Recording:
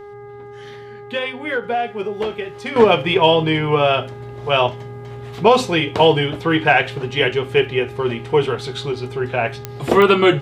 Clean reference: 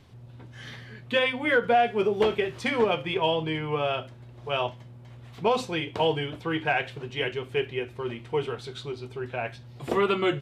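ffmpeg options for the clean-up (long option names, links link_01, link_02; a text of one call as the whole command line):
ffmpeg -i in.wav -af "adeclick=threshold=4,bandreject=frequency=409:width_type=h:width=4,bandreject=frequency=818:width_type=h:width=4,bandreject=frequency=1227:width_type=h:width=4,bandreject=frequency=1636:width_type=h:width=4,bandreject=frequency=2045:width_type=h:width=4,asetnsamples=nb_out_samples=441:pad=0,asendcmd='2.76 volume volume -11.5dB',volume=0dB" out.wav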